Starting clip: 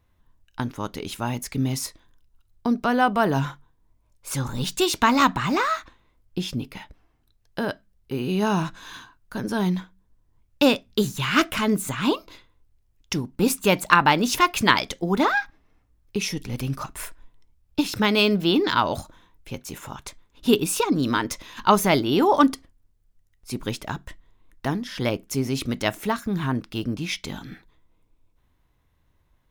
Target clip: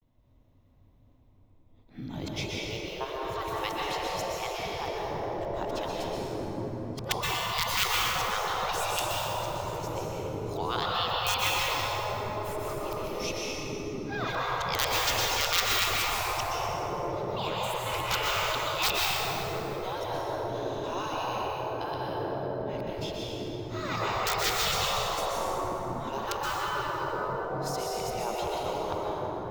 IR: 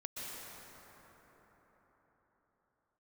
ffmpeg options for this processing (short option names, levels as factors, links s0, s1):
-filter_complex "[0:a]areverse,aeval=exprs='(mod(2.24*val(0)+1,2)-1)/2.24':c=same,equalizer=f=100:t=o:w=0.67:g=11,equalizer=f=250:t=o:w=0.67:g=11,equalizer=f=630:t=o:w=0.67:g=7,equalizer=f=1600:t=o:w=0.67:g=-9,equalizer=f=10000:t=o:w=0.67:g=-11[s0];[1:a]atrim=start_sample=2205[s1];[s0][s1]afir=irnorm=-1:irlink=0,afftfilt=real='re*lt(hypot(re,im),0.224)':imag='im*lt(hypot(re,im),0.224)':win_size=1024:overlap=0.75"